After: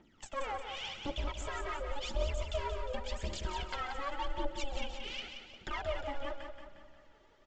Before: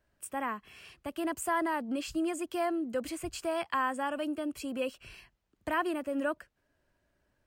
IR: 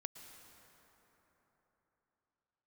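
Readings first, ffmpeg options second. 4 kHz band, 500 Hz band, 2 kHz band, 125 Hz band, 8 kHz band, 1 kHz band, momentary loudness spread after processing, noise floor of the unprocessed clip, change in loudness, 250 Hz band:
+4.0 dB, -5.0 dB, -5.5 dB, +12.5 dB, -6.0 dB, -6.0 dB, 7 LU, -77 dBFS, -5.5 dB, -14.5 dB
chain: -filter_complex "[0:a]aeval=exprs='val(0)*sin(2*PI*280*n/s)':c=same,equalizer=f=3.2k:t=o:w=0.34:g=8,acompressor=threshold=-46dB:ratio=6,bandreject=f=82.31:t=h:w=4,bandreject=f=164.62:t=h:w=4,bandreject=f=246.93:t=h:w=4,bandreject=f=329.24:t=h:w=4,bandreject=f=411.55:t=h:w=4,bandreject=f=493.86:t=h:w=4,bandreject=f=576.17:t=h:w=4,bandreject=f=658.48:t=h:w=4,bandreject=f=740.79:t=h:w=4,bandreject=f=823.1:t=h:w=4,aeval=exprs='clip(val(0),-1,0.00398)':c=same,aphaser=in_gain=1:out_gain=1:delay=2.6:decay=0.72:speed=0.9:type=triangular,aecho=1:1:178|356|534|712|890|1068:0.447|0.214|0.103|0.0494|0.0237|0.0114,asplit=2[a][b];[1:a]atrim=start_sample=2205,adelay=133[c];[b][c]afir=irnorm=-1:irlink=0,volume=-11dB[d];[a][d]amix=inputs=2:normalize=0,aresample=16000,aresample=44100,volume=8dB"

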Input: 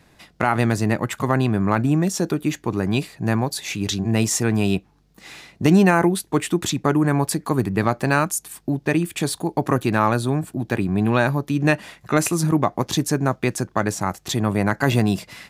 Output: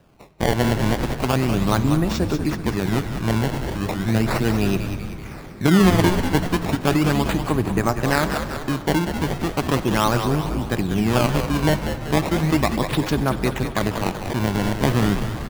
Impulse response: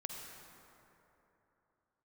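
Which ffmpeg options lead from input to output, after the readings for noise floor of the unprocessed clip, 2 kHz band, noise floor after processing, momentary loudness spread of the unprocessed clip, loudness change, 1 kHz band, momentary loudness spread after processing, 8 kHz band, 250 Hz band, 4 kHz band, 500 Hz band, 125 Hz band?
-57 dBFS, -1.0 dB, -34 dBFS, 6 LU, 0.0 dB, -0.5 dB, 6 LU, -5.5 dB, 0.0 dB, +2.0 dB, 0.0 dB, +0.5 dB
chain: -filter_complex "[0:a]acrusher=samples=20:mix=1:aa=0.000001:lfo=1:lforange=32:lforate=0.36,asplit=8[a][b][c][d][e][f][g][h];[b]adelay=192,afreqshift=-90,volume=-7.5dB[i];[c]adelay=384,afreqshift=-180,volume=-12.5dB[j];[d]adelay=576,afreqshift=-270,volume=-17.6dB[k];[e]adelay=768,afreqshift=-360,volume=-22.6dB[l];[f]adelay=960,afreqshift=-450,volume=-27.6dB[m];[g]adelay=1152,afreqshift=-540,volume=-32.7dB[n];[h]adelay=1344,afreqshift=-630,volume=-37.7dB[o];[a][i][j][k][l][m][n][o]amix=inputs=8:normalize=0,asplit=2[p][q];[1:a]atrim=start_sample=2205,lowpass=5.4k[r];[q][r]afir=irnorm=-1:irlink=0,volume=-5.5dB[s];[p][s]amix=inputs=2:normalize=0,volume=-3.5dB"

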